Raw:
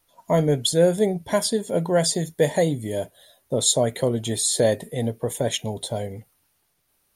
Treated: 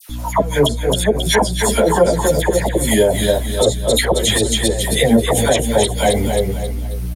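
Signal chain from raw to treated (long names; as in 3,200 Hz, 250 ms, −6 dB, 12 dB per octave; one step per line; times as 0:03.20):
low-shelf EQ 320 Hz −11.5 dB
in parallel at +3 dB: downward compressor 10 to 1, threshold −33 dBFS, peak gain reduction 18 dB
on the sum: gate with flip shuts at −12 dBFS, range −26 dB
mains hum 60 Hz, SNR 12 dB
all-pass dispersion lows, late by 96 ms, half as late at 1,400 Hz
on a send: repeating echo 268 ms, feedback 38%, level −7.5 dB
on the sum: boost into a limiter +22.5 dB
string-ensemble chorus
level −1 dB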